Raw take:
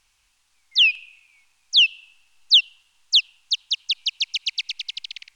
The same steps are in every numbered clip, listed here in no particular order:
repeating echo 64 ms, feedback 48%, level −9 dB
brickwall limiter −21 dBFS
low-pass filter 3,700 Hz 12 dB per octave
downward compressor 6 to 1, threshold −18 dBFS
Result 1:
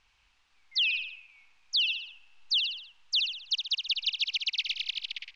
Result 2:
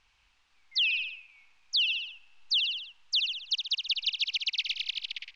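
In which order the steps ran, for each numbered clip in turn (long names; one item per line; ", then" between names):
low-pass filter, then downward compressor, then repeating echo, then brickwall limiter
repeating echo, then downward compressor, then low-pass filter, then brickwall limiter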